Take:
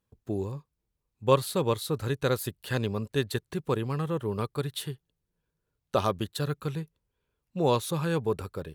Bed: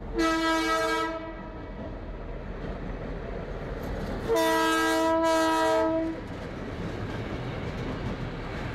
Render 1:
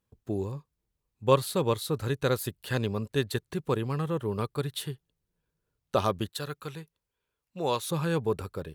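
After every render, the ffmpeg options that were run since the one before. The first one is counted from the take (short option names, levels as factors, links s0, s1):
-filter_complex "[0:a]asettb=1/sr,asplit=3[s0][s1][s2];[s0]atrim=end=6.294[s3];[s1]atrim=start=6.29:end=7.89,asetpts=PTS-STARTPTS,afade=t=in:d=0.004:c=qsin,afade=t=out:st=1.596:d=0.004:c=qsin,lowshelf=f=430:g=-10[s4];[s2]atrim=start=7.886[s5];[s3][s4]acrossfade=d=0.004:c1=hsin:c2=qsin[s6];[s6][s5]acrossfade=d=0.004:c1=qsin:c2=hsin"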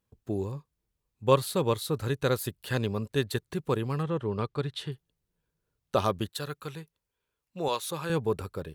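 -filter_complex "[0:a]asettb=1/sr,asplit=3[s0][s1][s2];[s0]atrim=end=4.034[s3];[s1]atrim=start=4.03:end=4.92,asetpts=PTS-STARTPTS,afade=t=in:d=0.004:c=qsin,afade=t=out:st=0.886:d=0.004:c=qsin,lowpass=5100[s4];[s2]atrim=start=4.916[s5];[s3][s4]acrossfade=d=0.004:c1=hsin:c2=qsin[s6];[s6][s5]acrossfade=d=0.004:c1=qsin:c2=hsin,asettb=1/sr,asplit=3[s7][s8][s9];[s7]atrim=end=7.684[s10];[s8]atrim=start=7.68:end=8.1,asetpts=PTS-STARTPTS,afade=t=in:d=0.004:c=qsin,afade=t=out:st=0.416:d=0.004:c=qsin,highpass=f=460:p=1[s11];[s9]atrim=start=8.096[s12];[s10][s11]acrossfade=d=0.004:c1=hsin:c2=qsin[s13];[s13][s12]acrossfade=d=0.004:c1=qsin:c2=hsin"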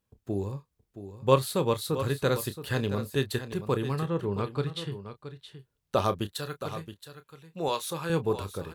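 -filter_complex "[0:a]asplit=2[s0][s1];[s1]adelay=30,volume=0.251[s2];[s0][s2]amix=inputs=2:normalize=0,aecho=1:1:672:0.266"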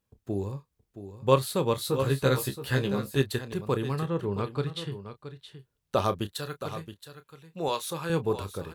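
-filter_complex "[0:a]asettb=1/sr,asplit=3[s0][s1][s2];[s0]atrim=end=1.764[s3];[s1]atrim=start=1.76:end=3.22,asetpts=PTS-STARTPTS,afade=t=in:d=0.004:c=qsin,afade=t=out:st=1.456:d=0.004:c=qsin,asplit=2[s4][s5];[s5]adelay=15,volume=0.708[s6];[s4][s6]amix=inputs=2:normalize=0,atrim=end_sample=64386[s7];[s2]atrim=start=3.216[s8];[s3][s7]acrossfade=d=0.004:c1=hsin:c2=qsin[s9];[s9][s8]acrossfade=d=0.004:c1=qsin:c2=hsin"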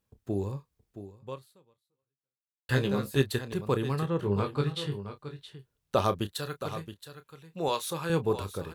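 -filter_complex "[0:a]asettb=1/sr,asplit=3[s0][s1][s2];[s0]atrim=end=4.204[s3];[s1]atrim=start=4.2:end=5.45,asetpts=PTS-STARTPTS,afade=t=in:d=0.004:c=qsin,afade=t=out:st=1.246:d=0.004:c=qsin,asplit=2[s4][s5];[s5]adelay=20,volume=0.631[s6];[s4][s6]amix=inputs=2:normalize=0,atrim=end_sample=55125[s7];[s2]atrim=start=5.446[s8];[s3][s7]acrossfade=d=0.004:c1=hsin:c2=qsin[s9];[s9][s8]acrossfade=d=0.004:c1=qsin:c2=hsin,asplit=2[s10][s11];[s10]atrim=end=2.69,asetpts=PTS-STARTPTS,afade=t=out:st=1.01:d=1.68:c=exp[s12];[s11]atrim=start=2.69,asetpts=PTS-STARTPTS,afade=t=in:d=0.004:c=hsin[s13];[s12][s13]concat=n=2:v=0:a=1"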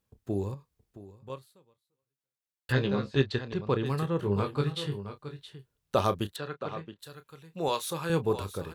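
-filter_complex "[0:a]asettb=1/sr,asplit=3[s0][s1][s2];[s0]atrim=end=0.544[s3];[s1]atrim=start=0.54:end=1.3,asetpts=PTS-STARTPTS,afade=t=in:d=0.004:c=qsin,afade=t=out:st=0.756:d=0.004:c=qsin,acompressor=threshold=0.00891:ratio=6:attack=3.2:release=140:knee=1:detection=peak[s4];[s2]atrim=start=1.296[s5];[s3][s4]acrossfade=d=0.004:c1=hsin:c2=qsin[s6];[s6][s5]acrossfade=d=0.004:c1=qsin:c2=hsin,asettb=1/sr,asplit=3[s7][s8][s9];[s7]atrim=end=2.724[s10];[s8]atrim=start=2.72:end=3.86,asetpts=PTS-STARTPTS,afade=t=in:d=0.004:c=qsin,afade=t=out:st=1.136:d=0.004:c=qsin,lowpass=f=5200:w=0.5412,lowpass=f=5200:w=1.3066[s11];[s9]atrim=start=3.856[s12];[s10][s11]acrossfade=d=0.004:c1=hsin:c2=qsin[s13];[s13][s12]acrossfade=d=0.004:c1=qsin:c2=hsin,asettb=1/sr,asplit=3[s14][s15][s16];[s14]atrim=end=6.364[s17];[s15]atrim=start=6.36:end=6.99,asetpts=PTS-STARTPTS,afade=t=in:d=0.004:c=qsin,afade=t=out:st=0.626:d=0.004:c=qsin,highpass=150,lowpass=3000[s18];[s16]atrim=start=6.986[s19];[s17][s18]acrossfade=d=0.004:c1=hsin:c2=qsin[s20];[s20][s19]acrossfade=d=0.004:c1=qsin:c2=hsin"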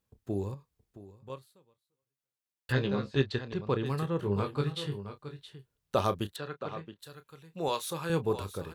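-af "volume=0.794"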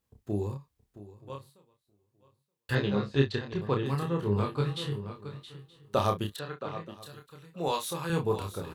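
-filter_complex "[0:a]asplit=2[s0][s1];[s1]adelay=29,volume=0.668[s2];[s0][s2]amix=inputs=2:normalize=0,aecho=1:1:925|1850:0.0668|0.0107"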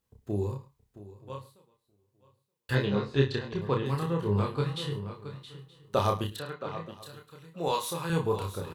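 -filter_complex "[0:a]asplit=2[s0][s1];[s1]adelay=31,volume=0.376[s2];[s0][s2]amix=inputs=2:normalize=0,aecho=1:1:106:0.119"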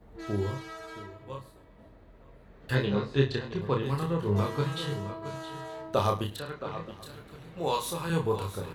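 -filter_complex "[1:a]volume=0.141[s0];[0:a][s0]amix=inputs=2:normalize=0"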